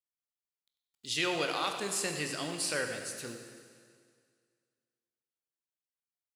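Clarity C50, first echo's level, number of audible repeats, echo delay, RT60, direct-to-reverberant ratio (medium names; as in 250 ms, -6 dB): 5.5 dB, -12.0 dB, 1, 95 ms, 2.0 s, 4.0 dB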